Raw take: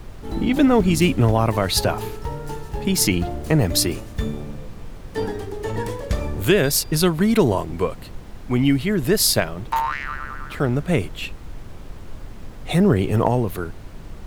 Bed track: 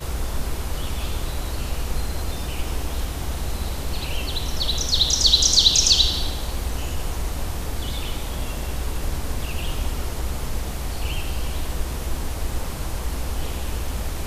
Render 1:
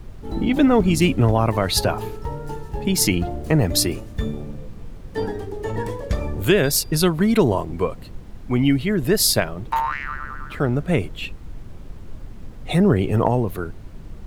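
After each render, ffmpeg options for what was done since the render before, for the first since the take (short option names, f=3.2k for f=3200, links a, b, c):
-af "afftdn=nr=6:nf=-38"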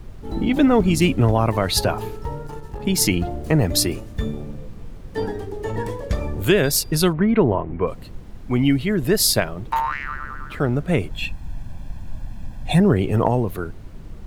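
-filter_complex "[0:a]asettb=1/sr,asplit=3[a][b][c];[a]atrim=end=2.434[d];[b]atrim=start=2.43:end=2.87,asetpts=PTS-STARTPTS,afade=t=in:d=0.004:c=qsin,afade=t=out:st=0.436:d=0.004:c=qsin,aeval=exprs='(tanh(14.1*val(0)+0.5)-tanh(0.5))/14.1':c=same[e];[c]atrim=start=2.866[f];[d][e]acrossfade=d=0.004:c1=hsin:c2=qsin[g];[g][f]acrossfade=d=0.004:c1=qsin:c2=hsin,asplit=3[h][i][j];[h]afade=t=out:st=7.12:d=0.02[k];[i]lowpass=f=2.4k:w=0.5412,lowpass=f=2.4k:w=1.3066,afade=t=in:st=7.12:d=0.02,afade=t=out:st=7.86:d=0.02[l];[j]afade=t=in:st=7.86:d=0.02[m];[k][l][m]amix=inputs=3:normalize=0,asettb=1/sr,asplit=3[n][o][p];[n]atrim=end=11.114[q];[o]atrim=start=11.11:end=12.8,asetpts=PTS-STARTPTS,afade=t=in:d=0.004:c=qsin,afade=t=out:st=1.686:d=0.004:c=qsin,aecho=1:1:1.2:0.79,atrim=end_sample=74529[r];[p]atrim=start=12.796[s];[q][r]acrossfade=d=0.004:c1=hsin:c2=qsin[t];[t][s]acrossfade=d=0.004:c1=qsin:c2=hsin"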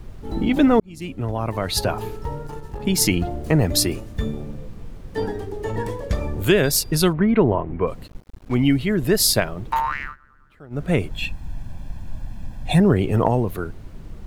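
-filter_complex "[0:a]asettb=1/sr,asplit=3[a][b][c];[a]atrim=end=8.074[d];[b]atrim=start=8.07:end=8.55,asetpts=PTS-STARTPTS,afade=t=in:d=0.004:c=qsin,afade=t=out:st=0.476:d=0.004:c=qsin,aeval=exprs='sgn(val(0))*max(abs(val(0))-0.0158,0)':c=same[e];[c]atrim=start=8.546[f];[d][e]acrossfade=d=0.004:c1=hsin:c2=qsin[g];[g][f]acrossfade=d=0.004:c1=qsin:c2=hsin,asplit=4[h][i][j][k];[h]atrim=end=0.8,asetpts=PTS-STARTPTS,afade=t=out:st=0.796:d=0.004:c=hsin[l];[i]atrim=start=0.8:end=10.16,asetpts=PTS-STARTPTS,afade=t=in:d=1.31,afade=t=out:st=9.23:d=0.13:silence=0.0794328[m];[j]atrim=start=10.16:end=10.7,asetpts=PTS-STARTPTS,volume=-22dB[n];[k]atrim=start=10.7,asetpts=PTS-STARTPTS,afade=t=in:d=0.13:silence=0.0794328[o];[l][m][n][o]concat=n=4:v=0:a=1"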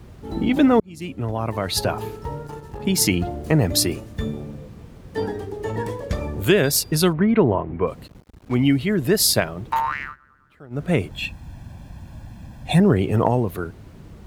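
-af "highpass=63"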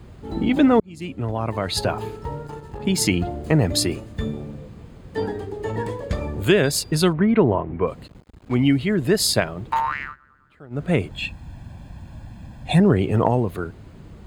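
-af "equalizer=f=13k:w=1.6:g=-12.5,bandreject=f=5.7k:w=7.2"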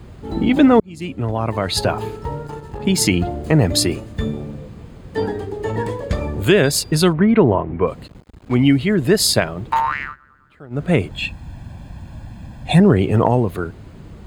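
-af "volume=4dB,alimiter=limit=-2dB:level=0:latency=1"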